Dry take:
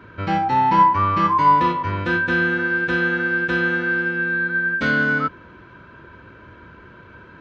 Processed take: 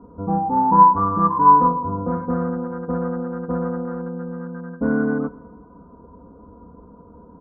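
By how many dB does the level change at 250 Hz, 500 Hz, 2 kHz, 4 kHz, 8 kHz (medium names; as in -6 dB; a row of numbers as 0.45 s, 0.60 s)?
+2.5 dB, +1.5 dB, -20.5 dB, under -40 dB, no reading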